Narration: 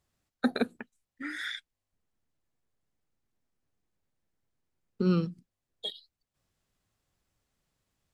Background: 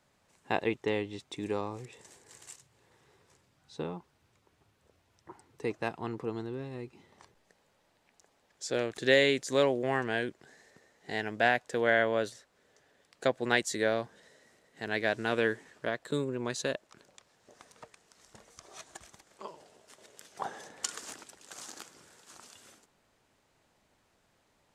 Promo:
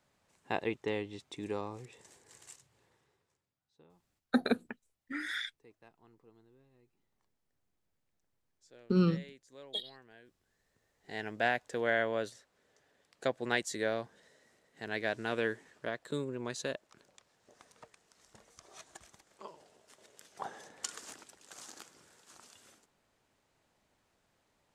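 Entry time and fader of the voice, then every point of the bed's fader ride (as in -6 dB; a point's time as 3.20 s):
3.90 s, -1.0 dB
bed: 2.81 s -4 dB
3.73 s -26.5 dB
10.39 s -26.5 dB
11.24 s -4.5 dB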